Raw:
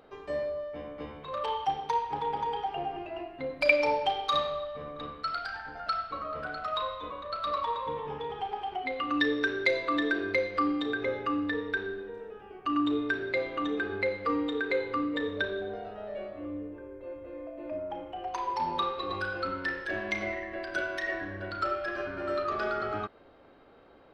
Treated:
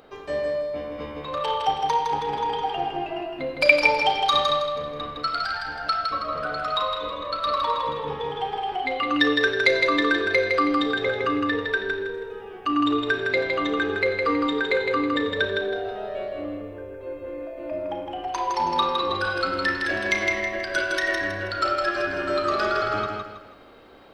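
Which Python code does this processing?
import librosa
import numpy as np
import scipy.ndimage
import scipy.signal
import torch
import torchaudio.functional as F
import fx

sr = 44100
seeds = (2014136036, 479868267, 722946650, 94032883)

y = fx.high_shelf(x, sr, hz=3400.0, db=fx.steps((0.0, 7.0), (19.24, 12.0)))
y = fx.echo_feedback(y, sr, ms=161, feedback_pct=36, wet_db=-4)
y = F.gain(torch.from_numpy(y), 5.0).numpy()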